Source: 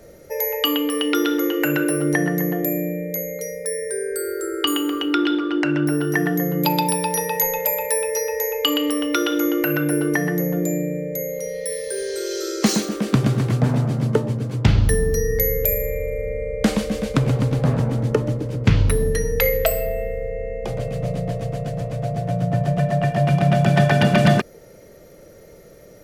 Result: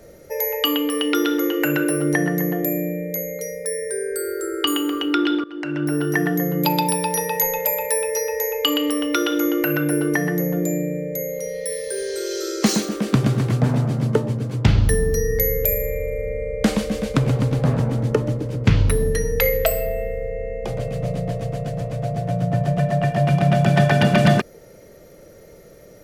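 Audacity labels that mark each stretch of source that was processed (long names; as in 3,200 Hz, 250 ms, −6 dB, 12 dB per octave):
5.440000	6.010000	fade in, from −19 dB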